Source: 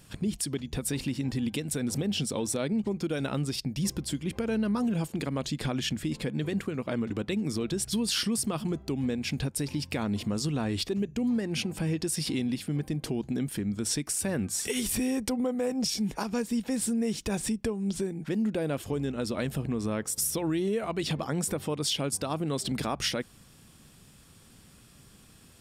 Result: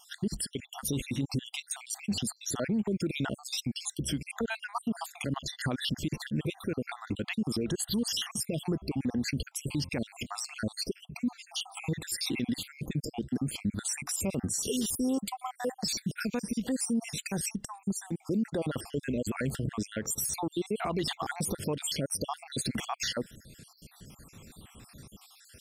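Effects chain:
time-frequency cells dropped at random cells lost 62%
brickwall limiter −29 dBFS, peak gain reduction 9.5 dB
level +6.5 dB

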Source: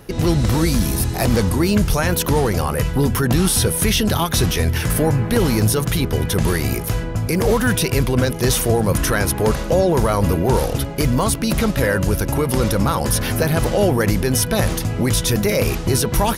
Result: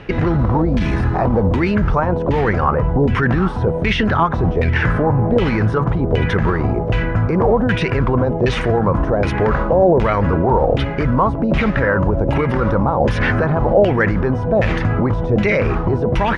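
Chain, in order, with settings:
low-pass filter 9,500 Hz 24 dB per octave
brickwall limiter −14 dBFS, peak gain reduction 8.5 dB
auto-filter low-pass saw down 1.3 Hz 580–2,700 Hz
level +5.5 dB

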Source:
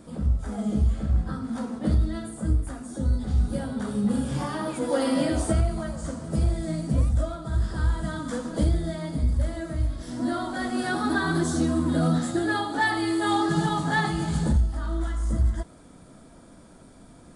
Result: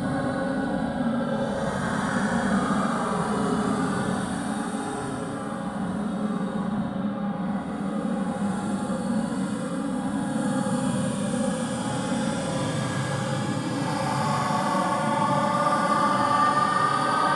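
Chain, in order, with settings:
high-pass filter 110 Hz 24 dB per octave
low-shelf EQ 480 Hz −4.5 dB
compressor whose output falls as the input rises −32 dBFS, ratio −1
spring reverb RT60 3.8 s, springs 40 ms, chirp 75 ms, DRR 2 dB
extreme stretch with random phases 21×, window 0.05 s, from 0:03.72
dynamic equaliser 1,100 Hz, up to +7 dB, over −44 dBFS, Q 1.1
level +2.5 dB

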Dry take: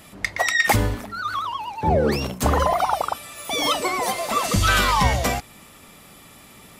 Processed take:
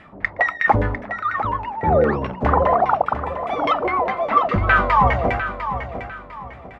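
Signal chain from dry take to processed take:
0:03.73–0:04.76: low-pass filter 4,100 Hz 12 dB per octave
auto-filter low-pass saw down 4.9 Hz 540–2,200 Hz
on a send: repeating echo 701 ms, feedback 32%, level −10 dB

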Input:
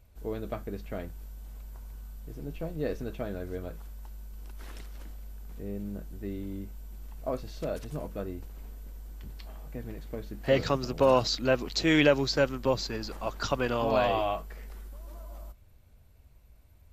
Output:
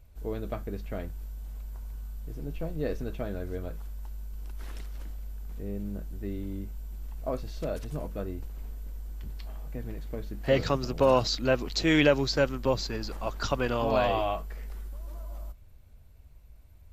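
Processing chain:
low-shelf EQ 68 Hz +7 dB

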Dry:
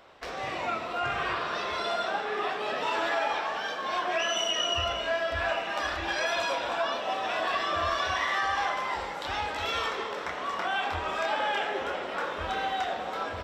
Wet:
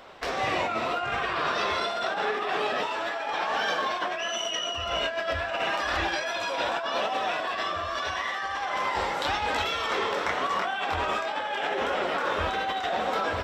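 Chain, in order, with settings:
compressor whose output falls as the input rises −33 dBFS, ratio −1
flanger 0.84 Hz, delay 3.6 ms, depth 7.7 ms, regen +63%
level +8.5 dB

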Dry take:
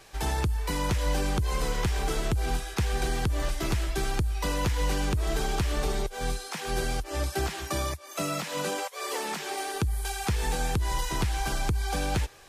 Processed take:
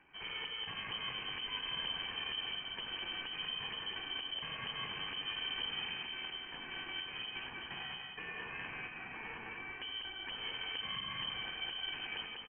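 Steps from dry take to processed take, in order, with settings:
lower of the sound and its delayed copy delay 1.4 ms
low-shelf EQ 470 Hz −11 dB
asymmetric clip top −38 dBFS
single-tap delay 195 ms −4 dB
on a send at −8 dB: convolution reverb, pre-delay 65 ms
on the sum: voice inversion scrambler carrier 3,100 Hz
level −7 dB

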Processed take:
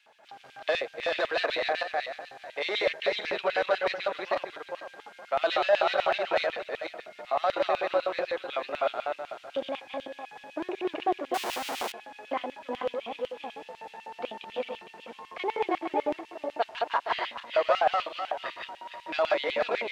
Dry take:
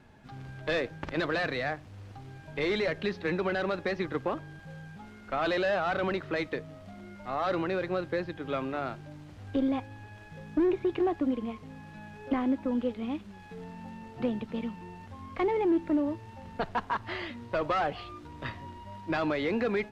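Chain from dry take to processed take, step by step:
feedback delay that plays each chunk backwards 229 ms, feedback 43%, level −1.5 dB
0:11.34–0:11.92: comparator with hysteresis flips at −46 dBFS
auto-filter high-pass square 8 Hz 630–2,800 Hz

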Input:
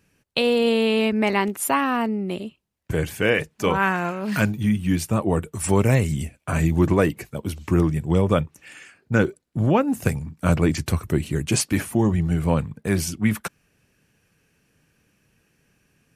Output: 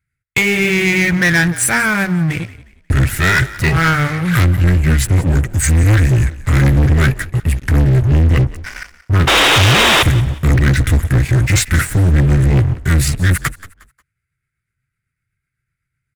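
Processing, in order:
pitch shift by two crossfaded delay taps −3 semitones
drawn EQ curve 130 Hz 0 dB, 210 Hz −15 dB, 1,000 Hz −21 dB, 1,600 Hz +1 dB, 5,100 Hz −15 dB, 12,000 Hz −3 dB
sound drawn into the spectrogram noise, 0:09.27–0:10.03, 280–3,900 Hz −25 dBFS
leveller curve on the samples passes 5
echo with shifted repeats 179 ms, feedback 32%, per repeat −45 Hz, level −17.5 dB
level +2.5 dB

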